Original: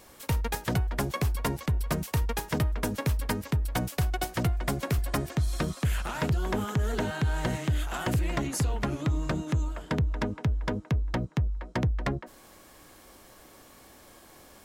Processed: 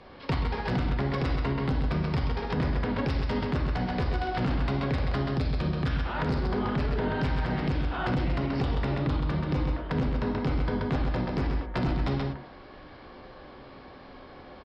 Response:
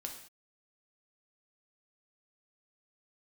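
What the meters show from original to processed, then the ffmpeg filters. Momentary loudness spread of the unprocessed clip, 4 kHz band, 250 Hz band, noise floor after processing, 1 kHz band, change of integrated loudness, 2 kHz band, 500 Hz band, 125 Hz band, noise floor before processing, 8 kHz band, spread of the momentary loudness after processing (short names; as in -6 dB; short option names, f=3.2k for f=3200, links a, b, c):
2 LU, -0.5 dB, +3.0 dB, -48 dBFS, +2.0 dB, +1.0 dB, +0.5 dB, +2.5 dB, +0.5 dB, -54 dBFS, under -20 dB, 19 LU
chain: -filter_complex "[0:a]equalizer=f=99:w=3.5:g=3,aresample=11025,aeval=exprs='(mod(8.91*val(0)+1,2)-1)/8.91':c=same,aresample=44100,aecho=1:1:131:0.501[a];[1:a]atrim=start_sample=2205,afade=t=out:st=0.17:d=0.01,atrim=end_sample=7938[b];[a][b]afir=irnorm=-1:irlink=0,acrossover=split=180[c][d];[d]asoftclip=type=tanh:threshold=-24.5dB[e];[c][e]amix=inputs=2:normalize=0,aemphasis=mode=reproduction:type=75fm,alimiter=level_in=3.5dB:limit=-24dB:level=0:latency=1:release=237,volume=-3.5dB,volume=8dB"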